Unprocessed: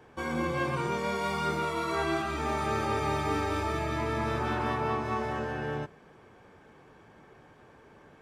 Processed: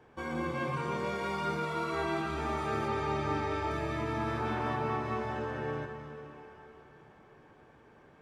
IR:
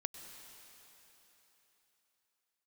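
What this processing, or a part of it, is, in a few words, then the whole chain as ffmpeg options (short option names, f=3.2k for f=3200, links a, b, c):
swimming-pool hall: -filter_complex "[0:a]asettb=1/sr,asplit=3[a][b][c];[a]atrim=end=2.884[d];[b]atrim=start=2.88:end=3.71,asetpts=PTS-STARTPTS,afade=t=in:d=0.004:c=qsin,afade=t=out:st=0.826:d=0.004:c=qsin,lowpass=6.6k[e];[c]atrim=start=3.706[f];[d][e]acrossfade=d=0.004:c1=hsin:c2=qsin[g];[g][f]acrossfade=d=0.004:c1=qsin:c2=hsin[h];[1:a]atrim=start_sample=2205[i];[h][i]afir=irnorm=-1:irlink=0,highshelf=f=5.1k:g=-6.5,volume=-1.5dB"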